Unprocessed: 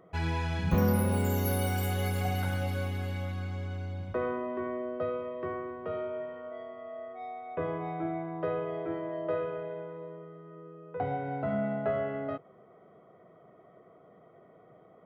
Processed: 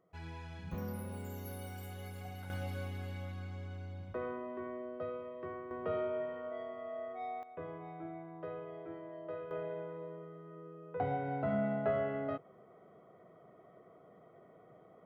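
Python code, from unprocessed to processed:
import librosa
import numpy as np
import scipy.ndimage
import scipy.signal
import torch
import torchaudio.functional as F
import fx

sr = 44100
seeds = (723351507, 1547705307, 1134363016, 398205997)

y = fx.gain(x, sr, db=fx.steps((0.0, -15.5), (2.5, -8.0), (5.71, -0.5), (7.43, -11.5), (9.51, -2.5)))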